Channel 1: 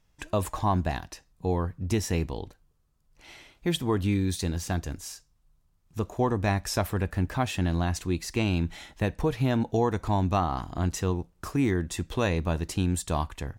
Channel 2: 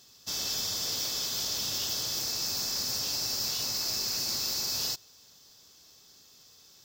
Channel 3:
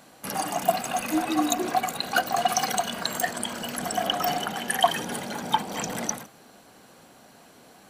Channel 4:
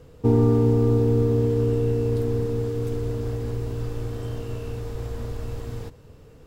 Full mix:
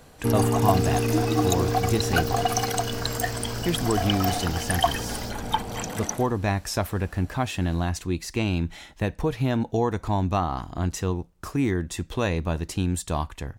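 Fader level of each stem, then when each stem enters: +1.0 dB, -10.5 dB, -1.5 dB, -5.0 dB; 0.00 s, 0.35 s, 0.00 s, 0.00 s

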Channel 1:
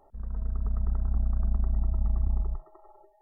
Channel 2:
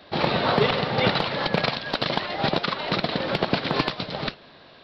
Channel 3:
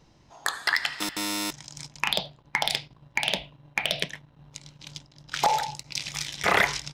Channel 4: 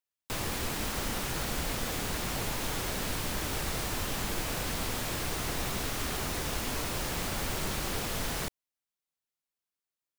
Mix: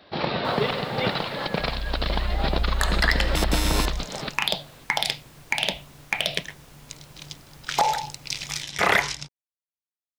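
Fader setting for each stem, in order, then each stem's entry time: +1.0 dB, -3.5 dB, +1.5 dB, -17.0 dB; 1.45 s, 0.00 s, 2.35 s, 0.15 s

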